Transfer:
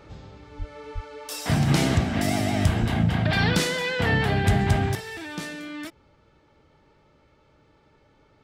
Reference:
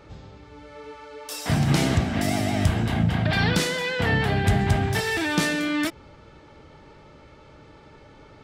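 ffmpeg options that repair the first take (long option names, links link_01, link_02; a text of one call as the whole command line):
ffmpeg -i in.wav -filter_complex "[0:a]asplit=3[link_01][link_02][link_03];[link_01]afade=type=out:start_time=0.58:duration=0.02[link_04];[link_02]highpass=frequency=140:width=0.5412,highpass=frequency=140:width=1.3066,afade=type=in:start_time=0.58:duration=0.02,afade=type=out:start_time=0.7:duration=0.02[link_05];[link_03]afade=type=in:start_time=0.7:duration=0.02[link_06];[link_04][link_05][link_06]amix=inputs=3:normalize=0,asplit=3[link_07][link_08][link_09];[link_07]afade=type=out:start_time=0.94:duration=0.02[link_10];[link_08]highpass=frequency=140:width=0.5412,highpass=frequency=140:width=1.3066,afade=type=in:start_time=0.94:duration=0.02,afade=type=out:start_time=1.06:duration=0.02[link_11];[link_09]afade=type=in:start_time=1.06:duration=0.02[link_12];[link_10][link_11][link_12]amix=inputs=3:normalize=0,asplit=3[link_13][link_14][link_15];[link_13]afade=type=out:start_time=2.8:duration=0.02[link_16];[link_14]highpass=frequency=140:width=0.5412,highpass=frequency=140:width=1.3066,afade=type=in:start_time=2.8:duration=0.02,afade=type=out:start_time=2.92:duration=0.02[link_17];[link_15]afade=type=in:start_time=2.92:duration=0.02[link_18];[link_16][link_17][link_18]amix=inputs=3:normalize=0,asetnsamples=nb_out_samples=441:pad=0,asendcmd='4.95 volume volume 11dB',volume=0dB" out.wav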